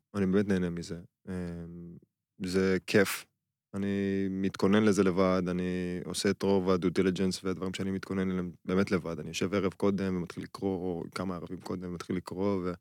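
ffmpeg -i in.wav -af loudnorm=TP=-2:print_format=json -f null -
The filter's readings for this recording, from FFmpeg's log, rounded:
"input_i" : "-31.4",
"input_tp" : "-12.4",
"input_lra" : "5.3",
"input_thresh" : "-41.6",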